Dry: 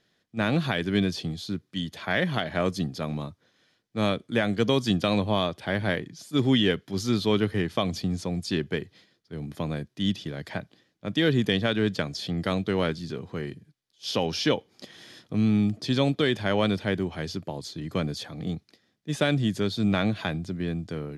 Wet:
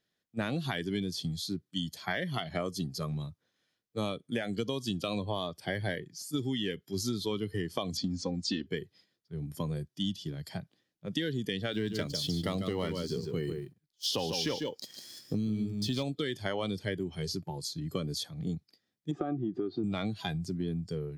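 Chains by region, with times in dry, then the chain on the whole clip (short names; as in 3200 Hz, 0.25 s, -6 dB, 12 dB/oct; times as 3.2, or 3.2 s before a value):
7.97–8.67 LPF 6500 Hz 24 dB/oct + comb 3.8 ms, depth 85%
11.73–16.03 sample leveller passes 1 + echo 0.147 s -6 dB
19.11–19.84 LPF 1900 Hz + compressor 2:1, threshold -32 dBFS + small resonant body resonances 340/740/1200 Hz, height 15 dB, ringing for 40 ms
whole clip: spectral noise reduction 13 dB; high shelf 9000 Hz +10.5 dB; compressor 10:1, threshold -29 dBFS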